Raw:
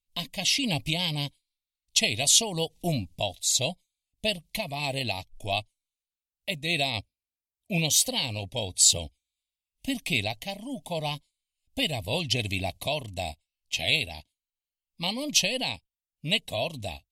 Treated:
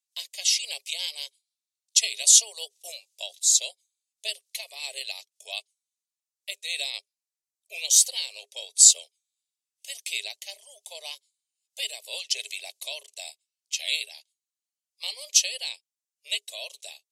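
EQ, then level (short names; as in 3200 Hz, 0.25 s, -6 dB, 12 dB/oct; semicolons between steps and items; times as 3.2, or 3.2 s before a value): rippled Chebyshev high-pass 400 Hz, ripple 6 dB; high shelf 2700 Hz +10.5 dB; bell 6800 Hz +15 dB 1.9 oct; -12.0 dB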